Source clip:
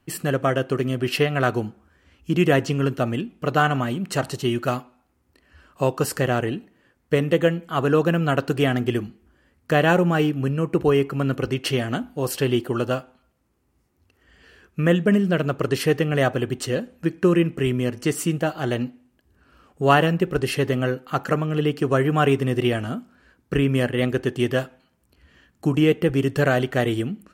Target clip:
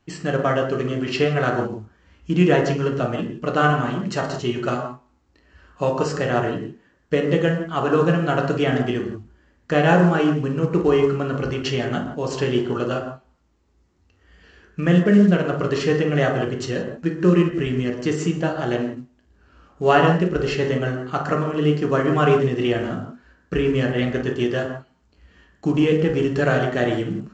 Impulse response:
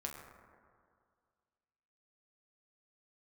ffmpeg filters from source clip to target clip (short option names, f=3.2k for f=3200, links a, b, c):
-filter_complex "[1:a]atrim=start_sample=2205,atrim=end_sample=6615,asetrate=36603,aresample=44100[a];[0:a][a]afir=irnorm=-1:irlink=0,volume=1.5dB" -ar 16000 -c:a pcm_mulaw